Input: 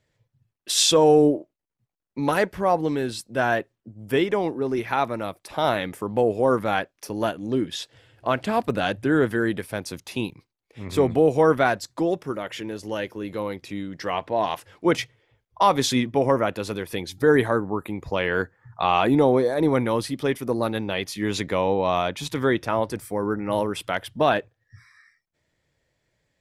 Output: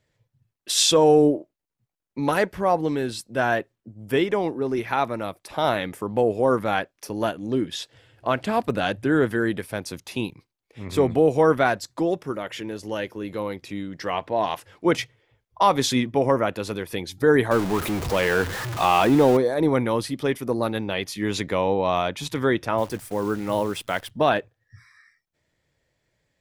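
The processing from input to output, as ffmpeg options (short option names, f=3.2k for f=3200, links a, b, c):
-filter_complex "[0:a]asettb=1/sr,asplit=3[a][b][c];[a]atrim=end=17.514[d];[b]atrim=start=17.51:end=19.37,asetpts=PTS-STARTPTS,afade=t=in:d=0.004:c=qsin,afade=t=out:st=1.856:d=0.004:c=qsin,aeval=exprs='val(0)+0.5*0.0596*sgn(val(0))':c=same[e];[c]atrim=start=19.366[f];[d][e]acrossfade=d=0.004:c1=hsin:c2=qsin[g];[g][f]acrossfade=d=0.004:c1=qsin:c2=hsin,asettb=1/sr,asplit=3[h][i][j];[h]atrim=end=22.784[k];[i]atrim=start=22.78:end=24.11,asetpts=PTS-STARTPTS,afade=t=in:d=0.004:c=qsin,afade=t=out:st=1.326:d=0.004:c=qsin,acrusher=bits=8:dc=4:mix=0:aa=0.000001[l];[j]atrim=start=24.106[m];[k][l]acrossfade=d=0.004:c1=hsin:c2=qsin[n];[n][m]acrossfade=d=0.004:c1=qsin:c2=hsin"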